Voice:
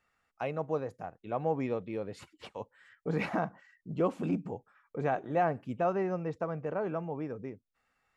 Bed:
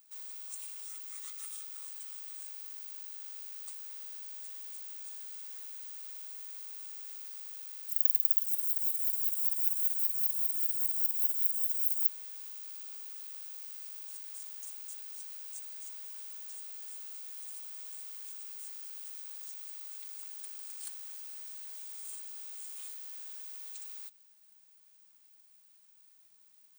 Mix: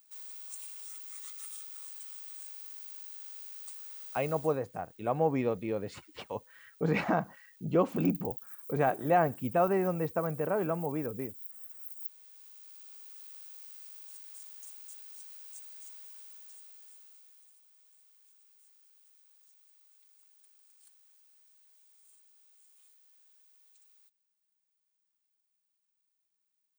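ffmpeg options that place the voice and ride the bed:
ffmpeg -i stem1.wav -i stem2.wav -filter_complex "[0:a]adelay=3750,volume=3dB[link_01];[1:a]volume=11dB,afade=type=out:start_time=4.35:duration=0.26:silence=0.177828,afade=type=in:start_time=11.79:duration=1.49:silence=0.251189,afade=type=out:start_time=15.94:duration=1.63:silence=0.188365[link_02];[link_01][link_02]amix=inputs=2:normalize=0" out.wav

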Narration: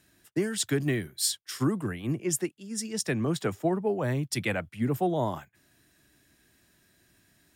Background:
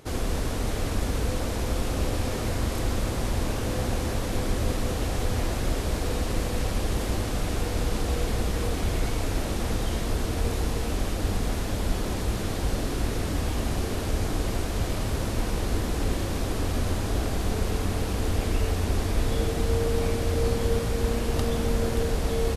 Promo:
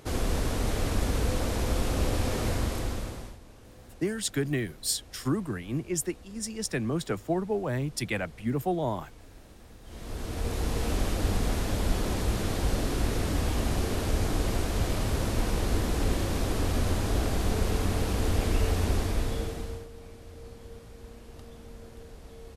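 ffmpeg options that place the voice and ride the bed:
ffmpeg -i stem1.wav -i stem2.wav -filter_complex "[0:a]adelay=3650,volume=-1.5dB[link_01];[1:a]volume=22.5dB,afade=type=out:start_time=2.49:duration=0.89:silence=0.0707946,afade=type=in:start_time=9.83:duration=1.06:silence=0.0707946,afade=type=out:start_time=18.86:duration=1.02:silence=0.0944061[link_02];[link_01][link_02]amix=inputs=2:normalize=0" out.wav

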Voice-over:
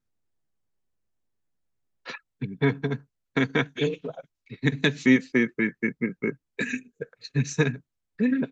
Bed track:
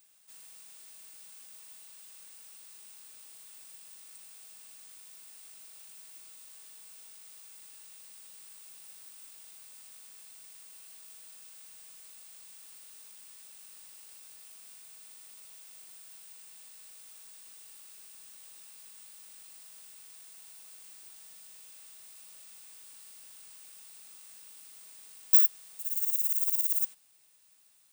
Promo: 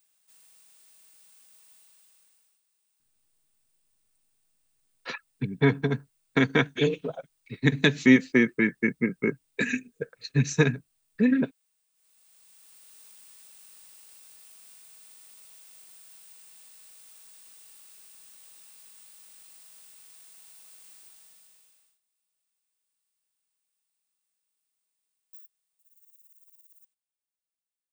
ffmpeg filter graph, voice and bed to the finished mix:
ffmpeg -i stem1.wav -i stem2.wav -filter_complex "[0:a]adelay=3000,volume=1.5dB[link_01];[1:a]volume=17dB,afade=type=out:start_time=1.78:duration=0.84:silence=0.133352,afade=type=in:start_time=11.93:duration=1.12:silence=0.0707946,afade=type=out:start_time=20.96:duration=1.04:silence=0.0334965[link_02];[link_01][link_02]amix=inputs=2:normalize=0" out.wav

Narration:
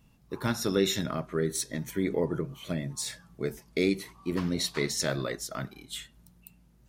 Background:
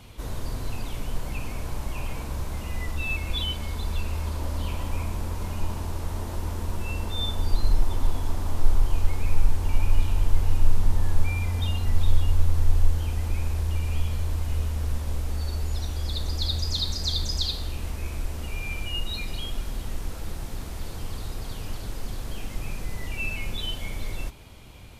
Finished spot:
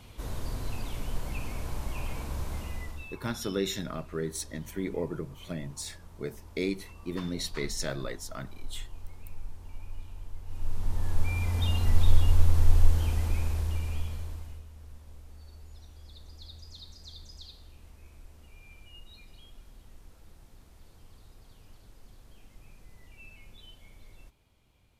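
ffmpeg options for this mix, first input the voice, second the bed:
ffmpeg -i stem1.wav -i stem2.wav -filter_complex "[0:a]adelay=2800,volume=-4.5dB[link_01];[1:a]volume=16.5dB,afade=type=out:start_time=2.56:duration=0.58:silence=0.149624,afade=type=in:start_time=10.45:duration=1.38:silence=0.1,afade=type=out:start_time=13.05:duration=1.58:silence=0.0944061[link_02];[link_01][link_02]amix=inputs=2:normalize=0" out.wav

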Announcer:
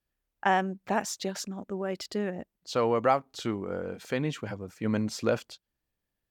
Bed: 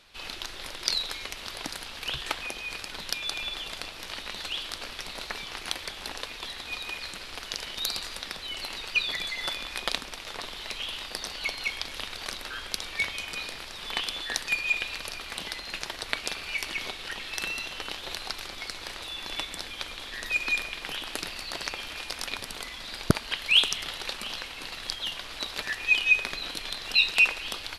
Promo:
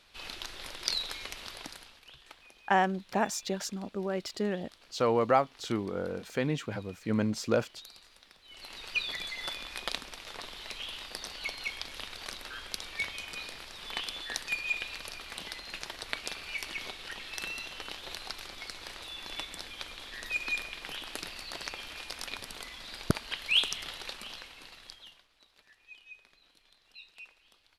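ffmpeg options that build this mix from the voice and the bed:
ffmpeg -i stem1.wav -i stem2.wav -filter_complex "[0:a]adelay=2250,volume=-0.5dB[link_01];[1:a]volume=11.5dB,afade=type=out:start_time=1.37:duration=0.66:silence=0.141254,afade=type=in:start_time=8.44:duration=0.48:silence=0.16788,afade=type=out:start_time=23.9:duration=1.38:silence=0.0630957[link_02];[link_01][link_02]amix=inputs=2:normalize=0" out.wav

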